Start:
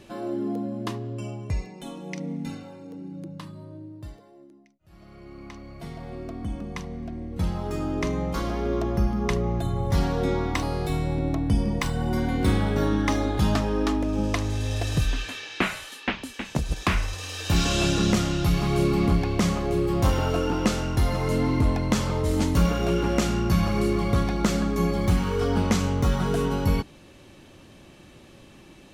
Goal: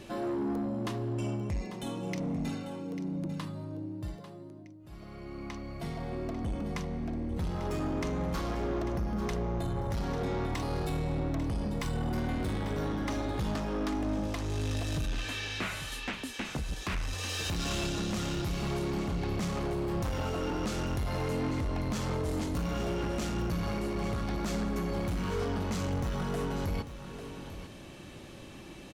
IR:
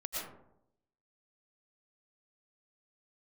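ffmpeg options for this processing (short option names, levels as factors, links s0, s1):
-af "alimiter=limit=0.0841:level=0:latency=1:release=354,asoftclip=type=tanh:threshold=0.0299,aecho=1:1:845:0.266,volume=1.26"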